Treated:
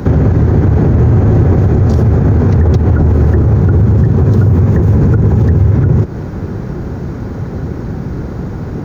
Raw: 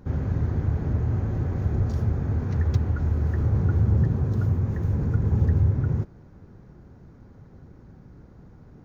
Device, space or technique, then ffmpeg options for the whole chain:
mastering chain: -filter_complex "[0:a]highpass=44,equalizer=f=380:t=o:w=0.45:g=2.5,acrossover=split=94|990[s0][s1][s2];[s0]acompressor=threshold=0.0158:ratio=4[s3];[s1]acompressor=threshold=0.0398:ratio=4[s4];[s2]acompressor=threshold=0.00158:ratio=4[s5];[s3][s4][s5]amix=inputs=3:normalize=0,acompressor=threshold=0.0282:ratio=2,alimiter=level_in=28.2:limit=0.891:release=50:level=0:latency=1,volume=0.891"

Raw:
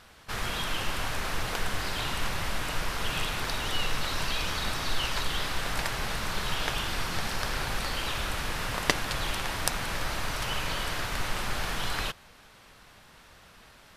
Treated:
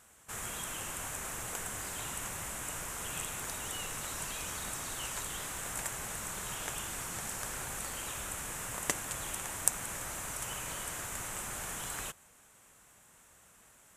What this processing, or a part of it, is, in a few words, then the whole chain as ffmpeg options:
budget condenser microphone: -af "highpass=f=68:p=1,highshelf=f=5900:t=q:w=3:g=9,volume=0.355"

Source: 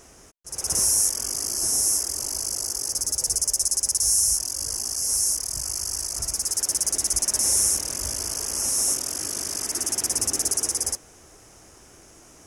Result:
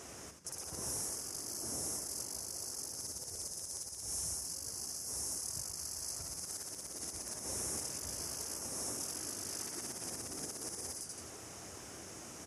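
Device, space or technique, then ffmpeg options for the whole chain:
podcast mastering chain: -filter_complex "[0:a]asplit=6[s0][s1][s2][s3][s4][s5];[s1]adelay=84,afreqshift=-110,volume=0.447[s6];[s2]adelay=168,afreqshift=-220,volume=0.174[s7];[s3]adelay=252,afreqshift=-330,volume=0.0676[s8];[s4]adelay=336,afreqshift=-440,volume=0.0266[s9];[s5]adelay=420,afreqshift=-550,volume=0.0104[s10];[s0][s6][s7][s8][s9][s10]amix=inputs=6:normalize=0,highpass=f=74:w=0.5412,highpass=f=74:w=1.3066,deesser=0.45,acompressor=threshold=0.0112:ratio=2,alimiter=level_in=1.5:limit=0.0631:level=0:latency=1:release=139,volume=0.668,volume=1.12" -ar 32000 -c:a libmp3lame -b:a 96k

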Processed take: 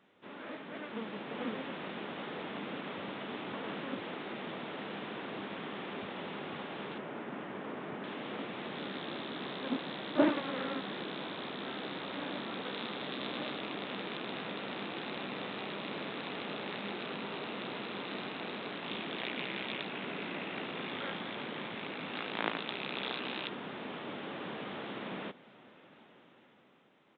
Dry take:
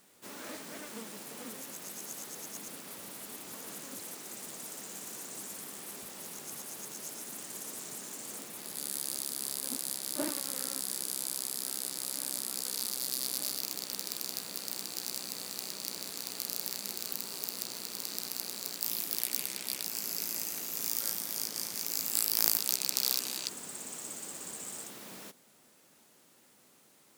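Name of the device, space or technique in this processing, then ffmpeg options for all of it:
Bluetooth headset: -filter_complex "[0:a]asettb=1/sr,asplit=3[s0][s1][s2];[s0]atrim=end=6.984[s3];[s1]atrim=start=6.98:end=8.04,asetpts=PTS-STARTPTS,afade=t=in:d=0.004:c=qsin,afade=t=out:st=1.056:d=0.004:c=qsin,lowpass=2100[s4];[s2]atrim=start=8.036[s5];[s3][s4]acrossfade=d=0.004:c1=hsin:c2=qsin[s6];[s6][s5]acrossfade=d=0.004:c1=qsin:c2=hsin,highpass=100,aemphasis=mode=reproduction:type=cd,dynaudnorm=f=130:g=17:m=2.99,aresample=8000,aresample=44100" -ar 16000 -c:a sbc -b:a 64k

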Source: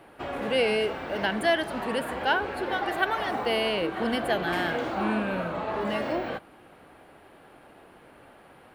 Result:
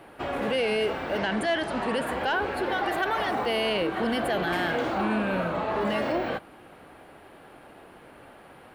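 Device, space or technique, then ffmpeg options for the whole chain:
soft clipper into limiter: -filter_complex "[0:a]asettb=1/sr,asplit=3[s0][s1][s2];[s0]atrim=end=1.194[s3];[s1]atrim=start=1.19:end=2.07,asetpts=PTS-STARTPTS,afade=t=in:d=0.004:c=qsin,afade=t=out:st=0.876:d=0.004:c=qsin,lowpass=f=9600:w=0.5412,lowpass=f=9600:w=1.3066[s4];[s2]atrim=start=2.066[s5];[s3][s4]acrossfade=d=0.004:c1=hsin:c2=qsin[s6];[s6][s5]acrossfade=d=0.004:c1=qsin:c2=hsin,asoftclip=type=tanh:threshold=0.211,alimiter=limit=0.0841:level=0:latency=1:release=17,volume=1.41"

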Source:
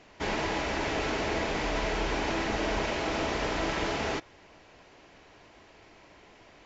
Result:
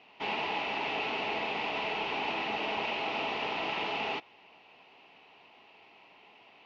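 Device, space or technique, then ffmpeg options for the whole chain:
kitchen radio: -af "highpass=230,equalizer=f=320:t=q:w=4:g=-7,equalizer=f=560:t=q:w=4:g=-6,equalizer=f=830:t=q:w=4:g=6,equalizer=f=1600:t=q:w=4:g=-9,equalizer=f=2700:t=q:w=4:g=10,lowpass=f=4200:w=0.5412,lowpass=f=4200:w=1.3066,volume=0.708"

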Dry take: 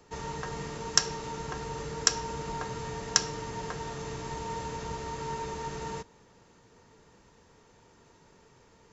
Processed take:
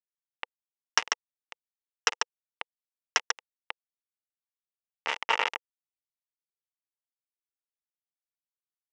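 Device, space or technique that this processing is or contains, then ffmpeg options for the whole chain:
hand-held game console: -filter_complex "[0:a]asplit=3[s0][s1][s2];[s0]afade=t=out:st=4.96:d=0.02[s3];[s1]equalizer=f=1400:w=0.89:g=12,afade=t=in:st=4.96:d=0.02,afade=t=out:st=5.47:d=0.02[s4];[s2]afade=t=in:st=5.47:d=0.02[s5];[s3][s4][s5]amix=inputs=3:normalize=0,aecho=1:1:143:0.596,acrusher=bits=3:mix=0:aa=0.000001,highpass=470,equalizer=f=490:t=q:w=4:g=6,equalizer=f=870:t=q:w=4:g=8,equalizer=f=1200:t=q:w=4:g=5,equalizer=f=2000:t=q:w=4:g=8,equalizer=f=2800:t=q:w=4:g=9,equalizer=f=4300:t=q:w=4:g=-8,lowpass=f=5500:w=0.5412,lowpass=f=5500:w=1.3066"

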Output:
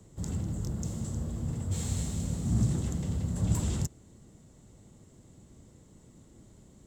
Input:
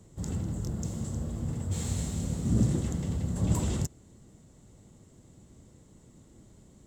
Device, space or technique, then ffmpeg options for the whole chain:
one-band saturation: -filter_complex "[0:a]acrossover=split=200|2900[s0][s1][s2];[s1]asoftclip=type=tanh:threshold=0.0126[s3];[s0][s3][s2]amix=inputs=3:normalize=0"

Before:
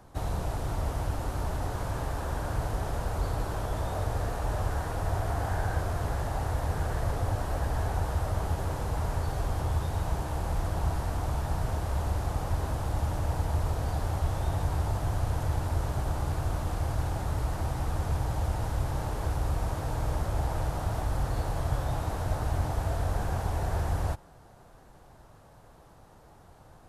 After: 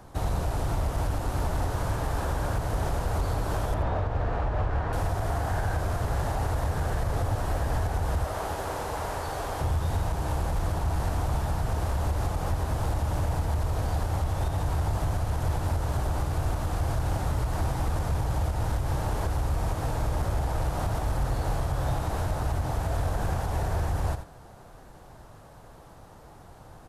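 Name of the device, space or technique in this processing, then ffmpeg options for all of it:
limiter into clipper: -filter_complex "[0:a]asettb=1/sr,asplit=3[s0][s1][s2];[s0]atrim=end=3.744[s3];[s1]atrim=start=3.74:end=4.93,asetpts=PTS-STARTPTS,afade=t=in:d=0.004:c=qsin,afade=t=out:st=1.186:d=0.004:c=qsin,lowpass=2600[s4];[s2]atrim=start=4.926[s5];[s3][s4]acrossfade=d=0.004:c1=hsin:c2=qsin[s6];[s6][s5]acrossfade=d=0.004:c1=qsin:c2=hsin,asettb=1/sr,asplit=3[s7][s8][s9];[s7]atrim=end=8.244[s10];[s8]atrim=start=8.24:end=9.61,asetpts=PTS-STARTPTS,afade=t=in:d=0.004:c=qsin,afade=t=out:st=1.366:d=0.004:c=qsin,bass=f=250:g=-13,treble=f=4000:g=-1[s11];[s9]atrim=start=9.606[s12];[s10][s11]acrossfade=d=0.004:c1=hsin:c2=qsin[s13];[s13][s12]acrossfade=d=0.004:c1=qsin:c2=hsin,aecho=1:1:84:0.237,alimiter=limit=0.0708:level=0:latency=1:release=140,asoftclip=type=hard:threshold=0.0531,volume=1.78"

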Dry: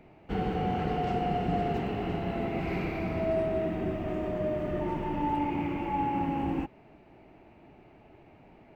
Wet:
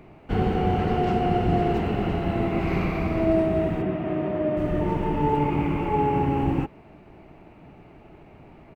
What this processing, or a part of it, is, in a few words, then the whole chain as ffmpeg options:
octave pedal: -filter_complex "[0:a]asettb=1/sr,asplit=3[s0][s1][s2];[s0]atrim=end=3.824[s3];[s1]atrim=start=3.82:end=4.57,asetpts=PTS-STARTPTS,afade=t=in:d=0.004:c=qsin,afade=t=out:st=0.746:d=0.004:c=qsin,acrossover=split=180 4100:gain=0.0794 1 0.0708[s4][s5][s6];[s4][s5][s6]amix=inputs=3:normalize=0[s7];[s2]atrim=start=4.566[s8];[s3][s7]acrossfade=d=0.004:c1=hsin:c2=qsin[s9];[s9][s8]acrossfade=d=0.004:c1=qsin:c2=hsin,asplit=2[s10][s11];[s11]asetrate=22050,aresample=44100,atempo=2,volume=0.794[s12];[s10][s12]amix=inputs=2:normalize=0,volume=1.78"

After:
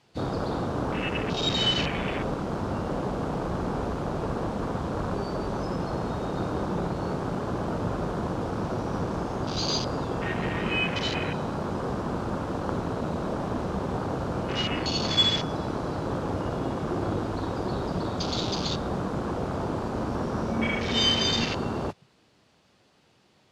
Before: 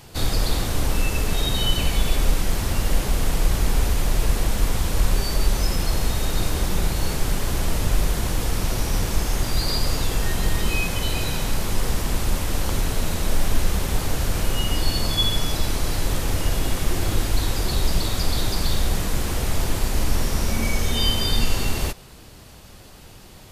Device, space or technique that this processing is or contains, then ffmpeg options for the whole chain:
over-cleaned archive recording: -af "highpass=150,lowpass=5200,afwtdn=0.0282,volume=1.26"

